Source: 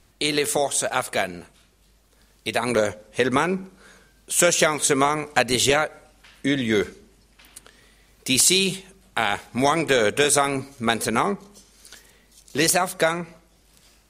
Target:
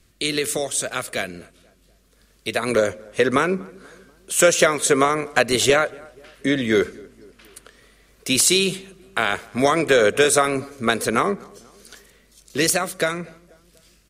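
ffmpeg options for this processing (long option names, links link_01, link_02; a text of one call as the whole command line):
ffmpeg -i in.wav -filter_complex "[0:a]equalizer=frequency=840:width_type=o:width=0.53:gain=-13.5,acrossover=split=440|1400[link_01][link_02][link_03];[link_02]dynaudnorm=framelen=450:gausssize=11:maxgain=9dB[link_04];[link_01][link_04][link_03]amix=inputs=3:normalize=0,asplit=2[link_05][link_06];[link_06]adelay=242,lowpass=frequency=1500:poles=1,volume=-24dB,asplit=2[link_07][link_08];[link_08]adelay=242,lowpass=frequency=1500:poles=1,volume=0.54,asplit=2[link_09][link_10];[link_10]adelay=242,lowpass=frequency=1500:poles=1,volume=0.54[link_11];[link_05][link_07][link_09][link_11]amix=inputs=4:normalize=0" out.wav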